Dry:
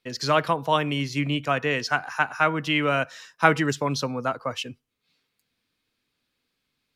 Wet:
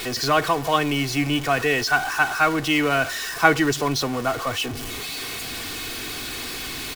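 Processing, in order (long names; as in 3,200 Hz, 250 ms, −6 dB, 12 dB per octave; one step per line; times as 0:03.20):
converter with a step at zero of −26 dBFS
comb filter 2.7 ms, depth 50%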